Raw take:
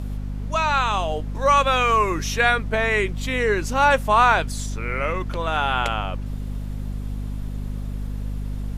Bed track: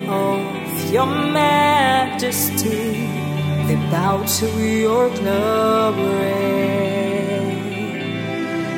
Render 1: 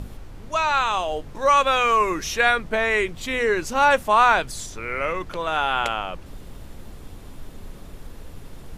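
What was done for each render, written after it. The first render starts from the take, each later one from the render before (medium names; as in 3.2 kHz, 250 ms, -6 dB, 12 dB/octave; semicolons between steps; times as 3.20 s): hum notches 50/100/150/200/250 Hz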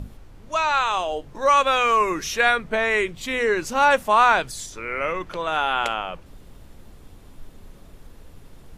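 noise print and reduce 6 dB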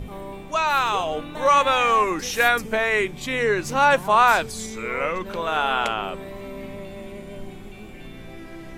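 add bed track -17.5 dB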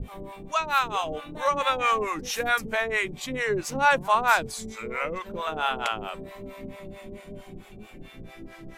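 harmonic tremolo 4.5 Hz, depth 100%, crossover 580 Hz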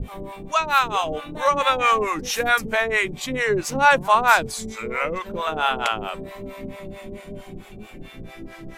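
trim +5 dB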